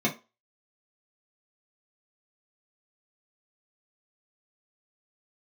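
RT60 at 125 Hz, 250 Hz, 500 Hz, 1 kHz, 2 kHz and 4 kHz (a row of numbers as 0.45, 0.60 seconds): 0.15, 0.25, 0.25, 0.30, 0.25, 0.25 seconds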